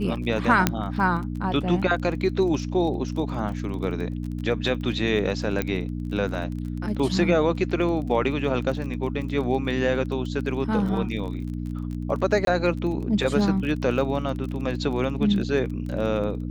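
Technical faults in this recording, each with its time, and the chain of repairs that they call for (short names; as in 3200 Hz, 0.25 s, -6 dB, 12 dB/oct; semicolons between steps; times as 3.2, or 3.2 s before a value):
crackle 20/s -32 dBFS
hum 60 Hz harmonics 5 -30 dBFS
0.67 pop -3 dBFS
5.62 pop -11 dBFS
12.45–12.47 gap 22 ms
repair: de-click; de-hum 60 Hz, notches 5; interpolate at 12.45, 22 ms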